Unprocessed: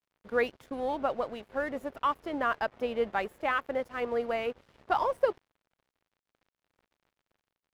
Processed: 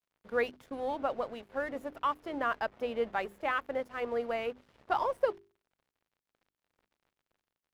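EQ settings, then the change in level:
mains-hum notches 50/100/150/200/250/300/350/400 Hz
−2.5 dB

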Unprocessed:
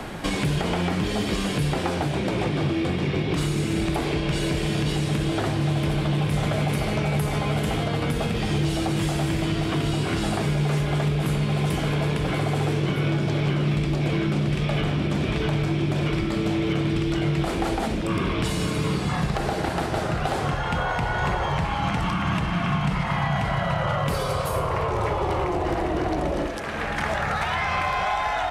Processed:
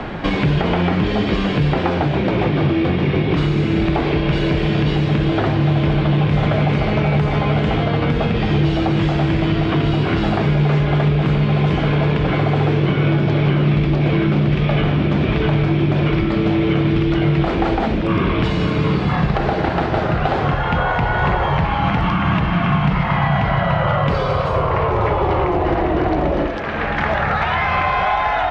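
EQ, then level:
low-pass filter 3,800 Hz 12 dB per octave
high-frequency loss of the air 100 metres
+7.5 dB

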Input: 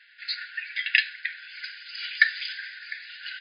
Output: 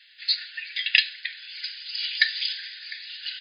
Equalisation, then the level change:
parametric band 1,800 Hz +5.5 dB 0.29 octaves
high shelf with overshoot 2,300 Hz +13.5 dB, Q 1.5
−8.5 dB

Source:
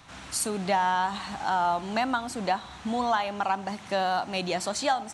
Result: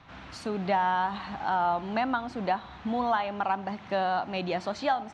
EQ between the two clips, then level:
high-frequency loss of the air 240 metres
0.0 dB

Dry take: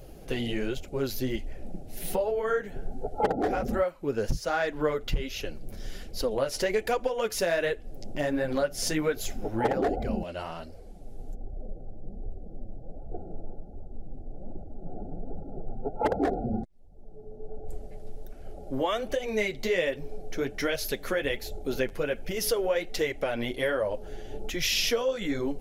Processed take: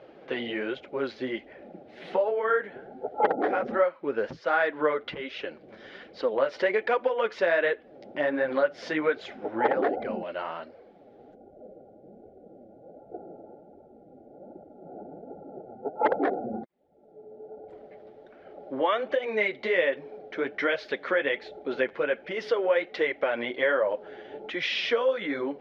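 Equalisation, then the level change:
loudspeaker in its box 410–3,000 Hz, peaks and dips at 420 Hz −3 dB, 720 Hz −5 dB, 2,700 Hz −6 dB
+6.0 dB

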